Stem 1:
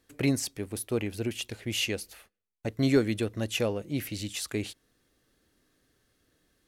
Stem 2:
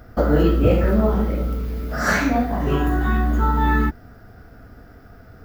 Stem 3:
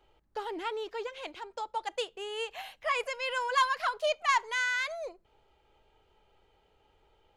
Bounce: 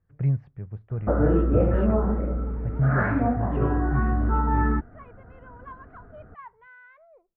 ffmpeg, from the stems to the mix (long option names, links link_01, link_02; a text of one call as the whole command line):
ffmpeg -i stem1.wav -i stem2.wav -i stem3.wav -filter_complex "[0:a]lowshelf=frequency=200:width_type=q:width=3:gain=10.5,volume=-8dB[link_01];[1:a]adelay=900,volume=-4dB[link_02];[2:a]adelay=2100,volume=-16.5dB[link_03];[link_01][link_02][link_03]amix=inputs=3:normalize=0,lowpass=frequency=1600:width=0.5412,lowpass=frequency=1600:width=1.3066" out.wav